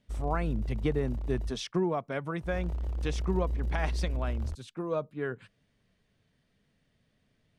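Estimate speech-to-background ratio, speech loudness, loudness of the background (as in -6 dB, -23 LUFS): 1.0 dB, -34.5 LUFS, -35.5 LUFS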